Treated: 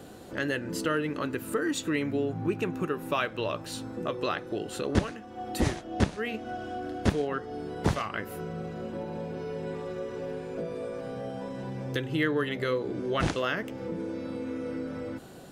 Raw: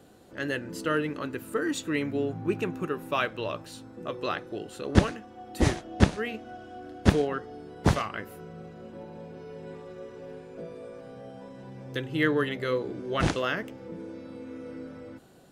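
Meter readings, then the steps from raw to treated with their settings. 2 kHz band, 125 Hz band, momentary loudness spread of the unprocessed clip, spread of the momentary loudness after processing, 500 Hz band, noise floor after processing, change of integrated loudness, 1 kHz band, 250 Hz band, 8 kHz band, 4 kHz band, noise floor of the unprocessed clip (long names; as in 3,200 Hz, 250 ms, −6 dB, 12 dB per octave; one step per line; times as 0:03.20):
−1.0 dB, −3.0 dB, 18 LU, 8 LU, 0.0 dB, −45 dBFS, −2.5 dB, −0.5 dB, −0.5 dB, +0.5 dB, −0.5 dB, −48 dBFS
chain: downward compressor 2 to 1, threshold −41 dBFS, peak gain reduction 15.5 dB
level +8.5 dB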